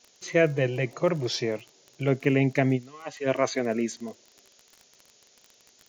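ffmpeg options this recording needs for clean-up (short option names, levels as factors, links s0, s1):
-af "adeclick=t=4,afftdn=nr=11:nf=-60"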